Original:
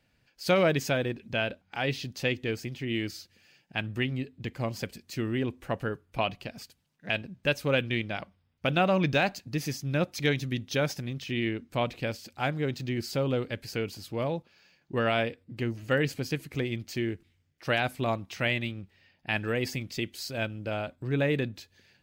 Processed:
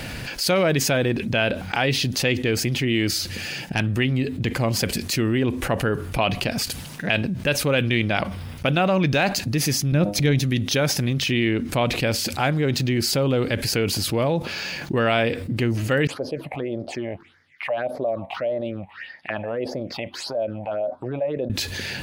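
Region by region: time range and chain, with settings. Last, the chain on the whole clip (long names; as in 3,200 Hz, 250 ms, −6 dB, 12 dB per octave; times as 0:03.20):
0:03.18–0:03.80: low-shelf EQ 170 Hz +5.5 dB + tube saturation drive 21 dB, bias 0.65
0:09.92–0:10.39: hum removal 101.9 Hz, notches 9 + downward expander −37 dBFS + low-shelf EQ 360 Hz +11 dB
0:16.07–0:21.50: all-pass phaser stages 6, 1.7 Hz, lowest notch 360–2,700 Hz + envelope filter 590–2,300 Hz, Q 6.1, down, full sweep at −32.5 dBFS
whole clip: parametric band 10,000 Hz +6.5 dB 0.27 octaves; envelope flattener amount 70%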